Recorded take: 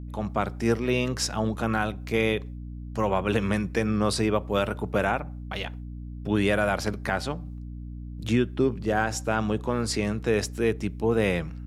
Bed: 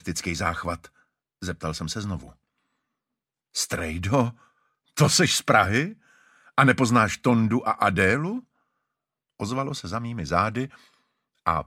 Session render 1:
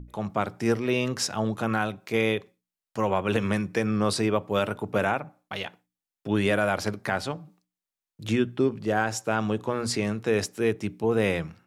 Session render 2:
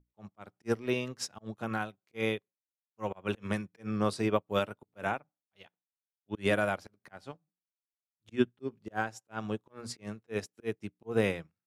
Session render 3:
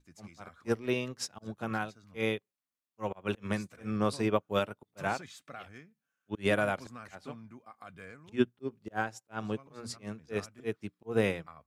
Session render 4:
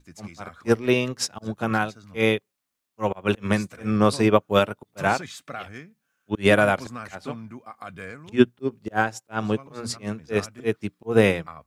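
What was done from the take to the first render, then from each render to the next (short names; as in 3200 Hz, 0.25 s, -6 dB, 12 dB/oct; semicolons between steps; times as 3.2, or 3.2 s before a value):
notches 60/120/180/240/300 Hz
auto swell 0.115 s; upward expander 2.5:1, over -44 dBFS
add bed -28 dB
gain +10.5 dB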